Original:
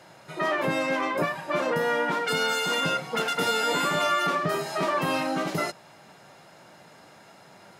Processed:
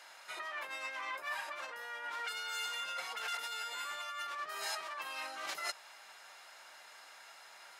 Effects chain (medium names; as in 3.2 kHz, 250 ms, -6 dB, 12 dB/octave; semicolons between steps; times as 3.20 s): compressor with a negative ratio -32 dBFS, ratio -1; high-pass 1.2 kHz 12 dB/octave; trim -5 dB